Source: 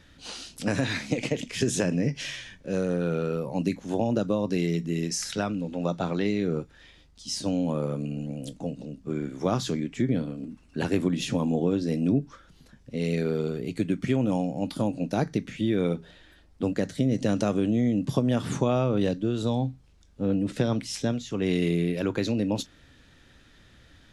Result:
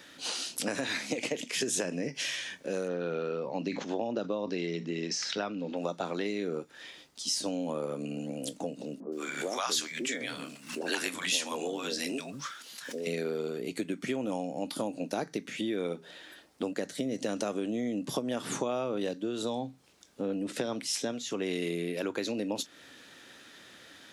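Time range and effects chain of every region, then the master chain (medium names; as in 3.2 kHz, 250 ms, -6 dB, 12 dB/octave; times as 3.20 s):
2.88–5.77 s: low-pass 5.2 kHz 24 dB/octave + decay stretcher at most 83 dB/s
9.00–13.07 s: tilt shelf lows -9.5 dB, about 670 Hz + three bands offset in time mids, highs, lows 120/210 ms, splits 180/630 Hz + swell ahead of each attack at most 110 dB/s
whole clip: high-pass 310 Hz 12 dB/octave; compression 2.5:1, threshold -40 dBFS; treble shelf 8.5 kHz +8 dB; trim +6 dB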